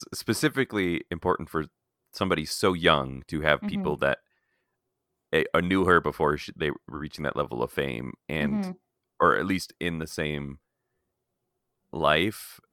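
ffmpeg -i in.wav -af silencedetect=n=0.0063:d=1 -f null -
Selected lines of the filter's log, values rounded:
silence_start: 4.15
silence_end: 5.33 | silence_duration: 1.17
silence_start: 10.55
silence_end: 11.93 | silence_duration: 1.39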